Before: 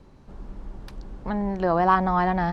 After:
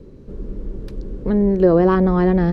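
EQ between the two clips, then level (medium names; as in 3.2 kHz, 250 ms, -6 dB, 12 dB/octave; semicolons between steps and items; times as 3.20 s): resonant low shelf 600 Hz +9 dB, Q 3; 0.0 dB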